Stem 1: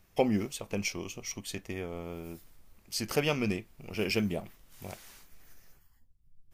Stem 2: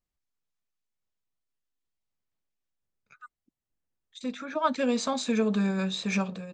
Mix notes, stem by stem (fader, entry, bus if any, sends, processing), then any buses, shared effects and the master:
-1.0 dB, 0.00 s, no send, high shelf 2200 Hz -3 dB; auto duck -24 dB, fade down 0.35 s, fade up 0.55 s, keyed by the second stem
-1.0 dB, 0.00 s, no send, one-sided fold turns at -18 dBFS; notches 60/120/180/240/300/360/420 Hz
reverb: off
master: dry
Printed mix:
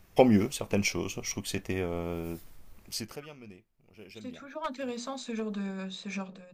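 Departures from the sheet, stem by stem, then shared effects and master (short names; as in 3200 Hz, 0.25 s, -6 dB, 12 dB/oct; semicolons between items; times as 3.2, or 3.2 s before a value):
stem 1 -1.0 dB -> +6.0 dB; stem 2 -1.0 dB -> -8.5 dB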